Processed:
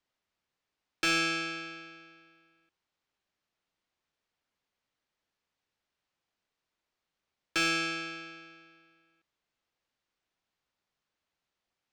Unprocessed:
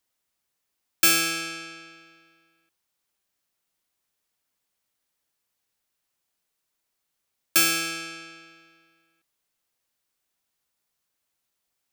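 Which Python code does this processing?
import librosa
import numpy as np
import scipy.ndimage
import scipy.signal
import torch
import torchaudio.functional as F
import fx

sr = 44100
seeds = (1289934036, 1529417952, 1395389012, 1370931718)

y = 10.0 ** (-15.5 / 20.0) * np.tanh(x / 10.0 ** (-15.5 / 20.0))
y = fx.air_absorb(y, sr, metres=140.0)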